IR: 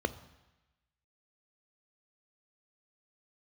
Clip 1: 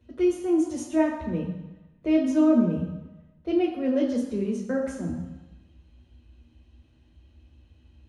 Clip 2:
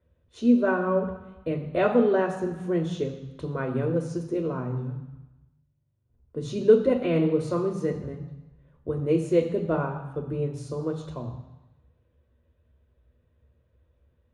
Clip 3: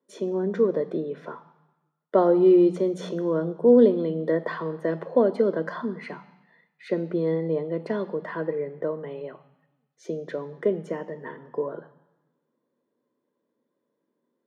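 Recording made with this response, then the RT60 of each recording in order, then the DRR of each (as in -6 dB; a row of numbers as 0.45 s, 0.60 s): 3; 1.0 s, 1.0 s, 1.0 s; -3.0 dB, 3.0 dB, 13.0 dB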